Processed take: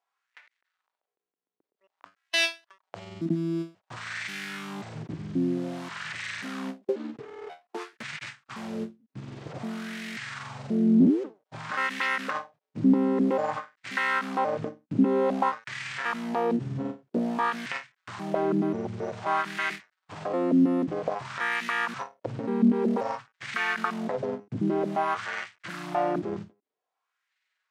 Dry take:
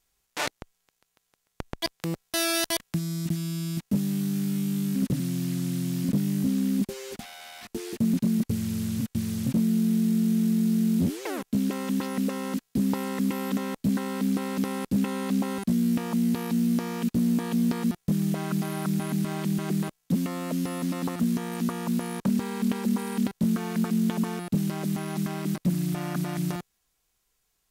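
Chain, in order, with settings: trilling pitch shifter -9.5 st, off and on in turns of 0.535 s; spectral repair 2.33–2.63, 1100–2600 Hz before; weighting filter A; harmonic-percussive split harmonic +5 dB; low shelf 140 Hz +5 dB; sample leveller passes 2; wah 0.52 Hz 280–2000 Hz, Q 2.6; ending taper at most 240 dB/s; gain +6.5 dB

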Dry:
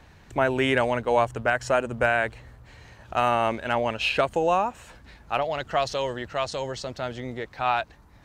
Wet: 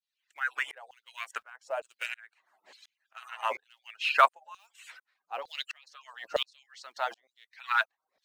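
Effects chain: median-filter separation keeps percussive; in parallel at -11 dB: short-mantissa float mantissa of 2-bit; on the sum: LFO high-pass saw down 1.1 Hz 520–4400 Hz; dB-ramp tremolo swelling 1.4 Hz, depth 37 dB; gain +3 dB

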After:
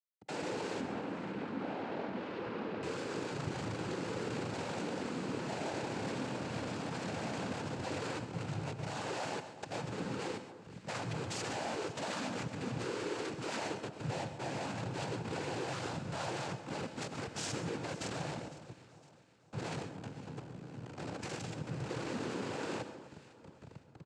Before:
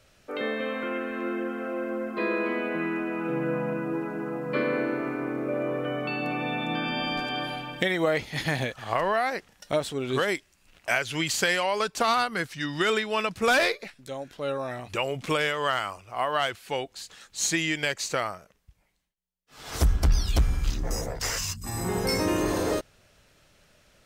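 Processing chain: median filter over 41 samples; high shelf 2400 Hz +10.5 dB; comb 7.1 ms, depth 81%; compressor 4:1, threshold -43 dBFS, peak gain reduction 22.5 dB; Schmitt trigger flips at -52 dBFS; noise vocoder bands 8; 0.81–2.83 air absorption 330 m; echo with dull and thin repeats by turns 0.254 s, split 1400 Hz, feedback 64%, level -13 dB; non-linear reverb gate 0.16 s rising, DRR 10.5 dB; gain +5.5 dB

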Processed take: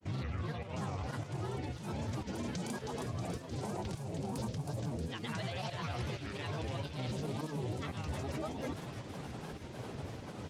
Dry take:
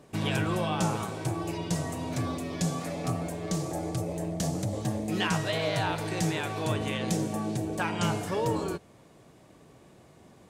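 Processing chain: LPF 6600 Hz 12 dB/oct; bell 110 Hz +10 dB 0.28 oct; reverse; compressor 8:1, threshold -40 dBFS, peak gain reduction 19 dB; reverse; limiter -41 dBFS, peak gain reduction 10.5 dB; pump 106 bpm, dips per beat 1, -14 dB, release 0.199 s; grains, grains 20/s, pitch spread up and down by 7 st; on a send: thin delay 0.318 s, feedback 69%, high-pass 2300 Hz, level -5.5 dB; on the sum: record warp 45 rpm, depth 160 cents; gain +11.5 dB

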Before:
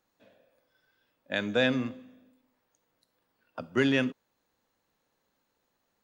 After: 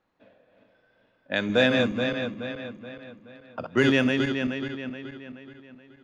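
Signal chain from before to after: regenerating reverse delay 0.213 s, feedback 67%, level -4 dB; low-pass opened by the level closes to 2800 Hz, open at -20.5 dBFS; gain +4 dB

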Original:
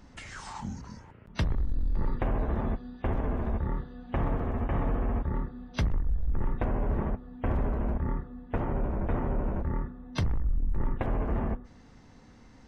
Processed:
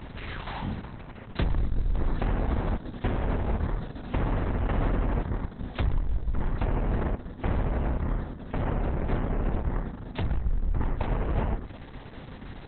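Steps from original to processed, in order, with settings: per-bin compression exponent 0.6; Opus 6 kbps 48000 Hz

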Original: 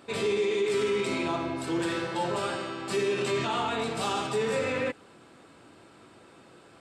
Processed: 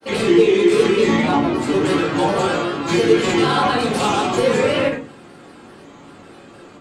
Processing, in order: grains, spray 35 ms, pitch spread up and down by 3 st; shoebox room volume 190 m³, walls furnished, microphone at 2.2 m; gain +7.5 dB

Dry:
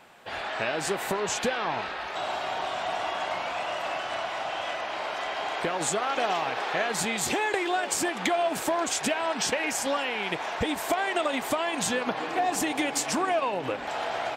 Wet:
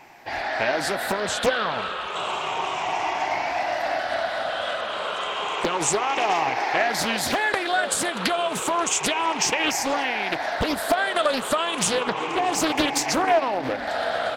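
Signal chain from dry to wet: moving spectral ripple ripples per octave 0.73, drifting -0.31 Hz, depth 10 dB; Doppler distortion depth 0.86 ms; gain +3.5 dB

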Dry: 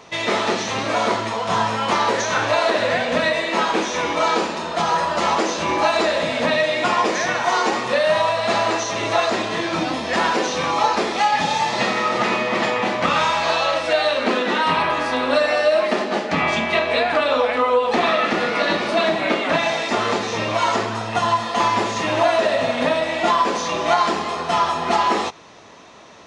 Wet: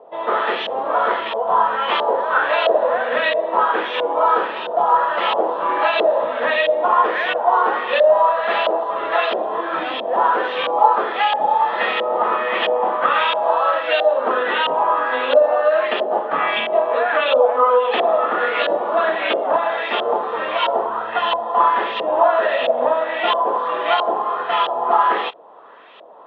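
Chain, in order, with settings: LFO low-pass saw up 1.5 Hz 590–2900 Hz; speaker cabinet 450–3900 Hz, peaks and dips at 480 Hz +5 dB, 2200 Hz -8 dB, 3300 Hz +9 dB; gain -1 dB

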